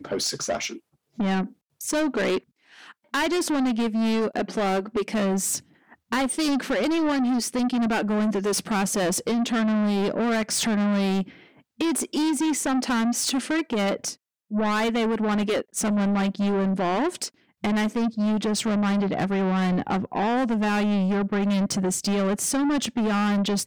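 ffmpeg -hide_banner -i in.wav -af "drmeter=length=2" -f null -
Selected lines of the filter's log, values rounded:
Channel 1: DR: -0.1
Overall DR: -0.1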